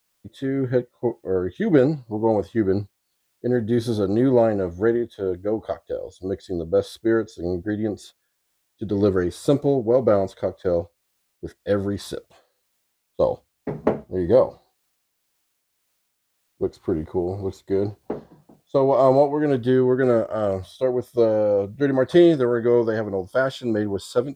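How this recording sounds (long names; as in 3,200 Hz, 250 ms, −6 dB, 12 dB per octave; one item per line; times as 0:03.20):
a quantiser's noise floor 12 bits, dither triangular
tremolo triangle 1.9 Hz, depth 35%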